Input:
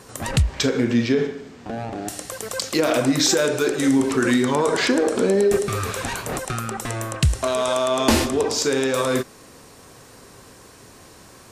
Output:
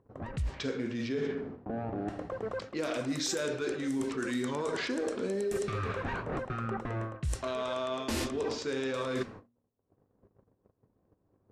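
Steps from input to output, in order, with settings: mains buzz 100 Hz, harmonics 5, -55 dBFS -4 dB/octave; dynamic bell 780 Hz, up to -4 dB, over -38 dBFS, Q 2; level-controlled noise filter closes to 540 Hz, open at -14 dBFS; gate -42 dBFS, range -45 dB; reverse; compression 6:1, threshold -31 dBFS, peak gain reduction 17.5 dB; reverse; de-hum 118.8 Hz, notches 2; upward compressor, threshold -51 dBFS

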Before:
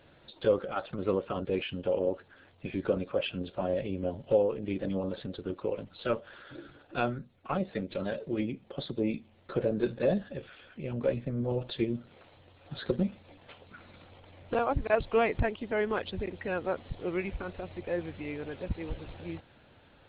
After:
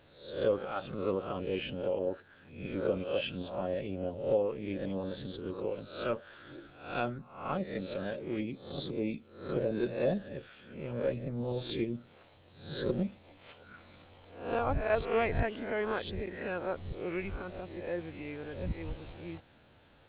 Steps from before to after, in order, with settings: reverse spectral sustain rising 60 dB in 0.55 s; trim -4.5 dB

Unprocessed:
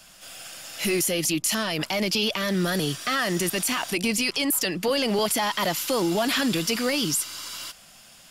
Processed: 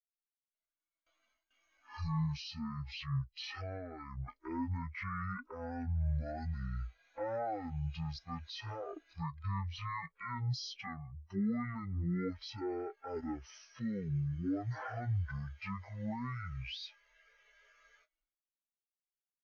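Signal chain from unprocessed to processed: expander on every frequency bin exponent 2; gate with hold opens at -52 dBFS; treble shelf 2.9 kHz -11 dB; gain riding 2 s; speed mistake 78 rpm record played at 33 rpm; trim -7.5 dB

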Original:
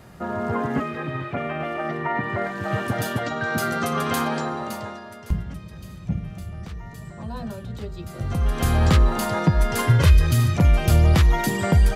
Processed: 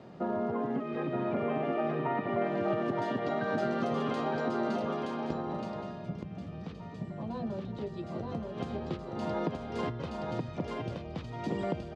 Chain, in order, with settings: peaking EQ 1.7 kHz -12.5 dB 1.8 oct; compression 12:1, threshold -29 dBFS, peak gain reduction 19.5 dB; band-pass 230–3300 Hz; distance through air 69 m; delay 923 ms -3 dB; trim +3 dB

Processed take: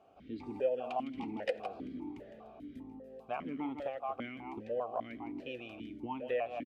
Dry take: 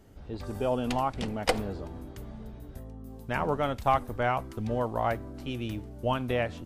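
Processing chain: delay 159 ms -10.5 dB; compression 6:1, threshold -32 dBFS, peak gain reduction 12.5 dB; stepped vowel filter 5 Hz; trim +9 dB

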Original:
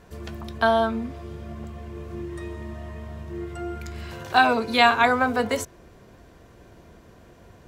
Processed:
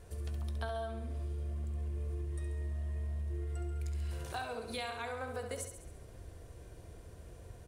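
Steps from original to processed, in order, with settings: FFT filter 100 Hz 0 dB, 210 Hz -14 dB, 480 Hz -7 dB, 1 kHz -14 dB, 7.9 kHz -7 dB; compression 6:1, threshold -42 dBFS, peak gain reduction 17.5 dB; peaking EQ 9.3 kHz +13 dB 0.28 oct; hum notches 50/100/150/200/250 Hz; feedback delay 68 ms, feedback 55%, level -7.5 dB; trim +3 dB

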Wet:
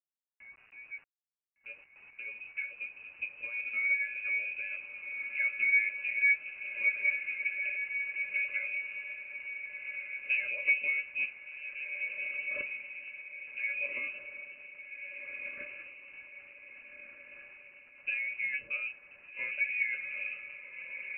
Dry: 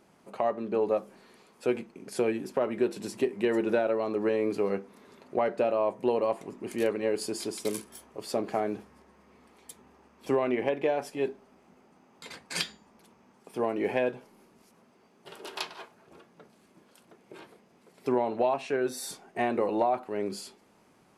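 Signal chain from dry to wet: fade-in on the opening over 5.34 s; in parallel at -4 dB: short-mantissa float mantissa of 2-bit; on the sum: pitch-class resonator C#, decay 0.1 s; word length cut 10-bit, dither none; on a send: echo that smears into a reverb 1568 ms, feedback 43%, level -5.5 dB; on the sum: frequency inversion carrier 2.8 kHz

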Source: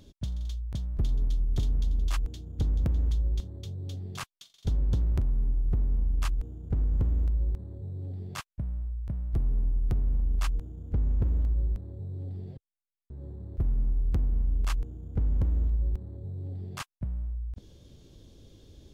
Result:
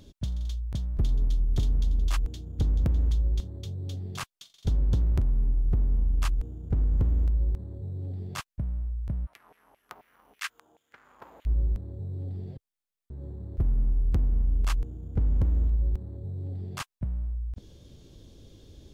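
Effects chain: 9.25–11.45 s: LFO high-pass saw down 6 Hz -> 1.2 Hz 730–2500 Hz; trim +2 dB

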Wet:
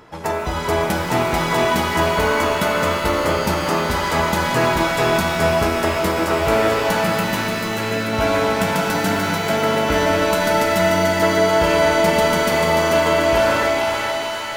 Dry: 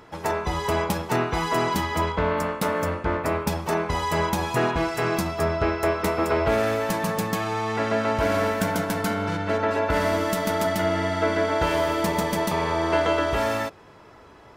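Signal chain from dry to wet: 7.03–8.13 s: static phaser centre 2 kHz, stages 4; on a send: thinning echo 439 ms, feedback 54%, high-pass 270 Hz, level -4 dB; on the sum: pitch-shifted reverb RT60 2.5 s, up +7 st, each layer -2 dB, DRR 5.5 dB; trim +2.5 dB

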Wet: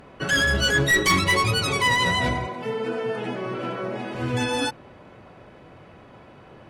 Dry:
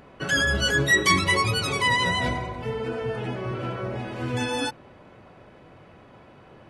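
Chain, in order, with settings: one-sided clip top -20.5 dBFS; 2.47–4.15 s: high-pass 160 Hz 24 dB/octave; trim +2.5 dB

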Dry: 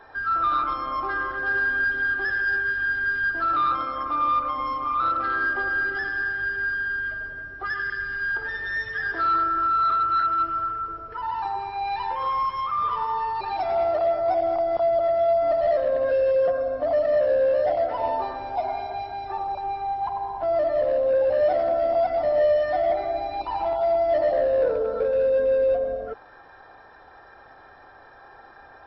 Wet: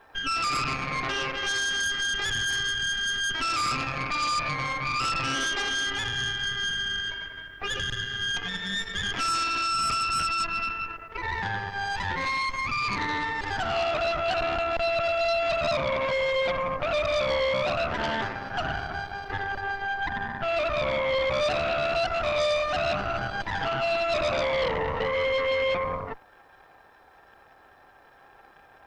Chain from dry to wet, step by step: Chebyshev shaper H 8 -8 dB, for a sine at -13 dBFS; word length cut 12-bit, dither triangular; trim -6.5 dB

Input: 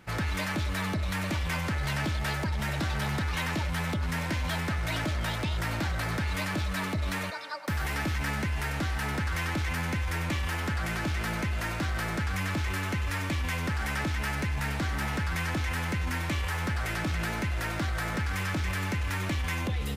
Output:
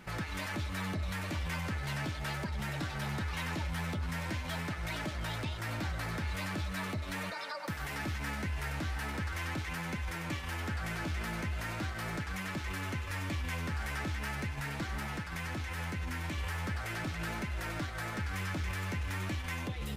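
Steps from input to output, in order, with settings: 15.00–16.38 s: high-pass 44 Hz; peak limiter -33 dBFS, peak gain reduction 12 dB; flange 0.4 Hz, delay 4.7 ms, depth 8.4 ms, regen -43%; trim +6 dB

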